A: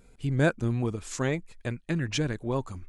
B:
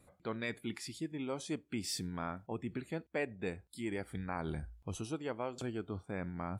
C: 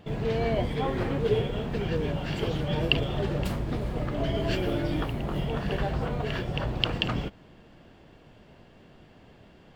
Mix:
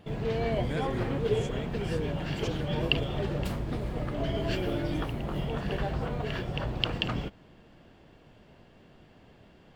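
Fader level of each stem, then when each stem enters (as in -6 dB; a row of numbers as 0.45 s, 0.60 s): -13.0 dB, -14.0 dB, -2.5 dB; 0.30 s, 0.00 s, 0.00 s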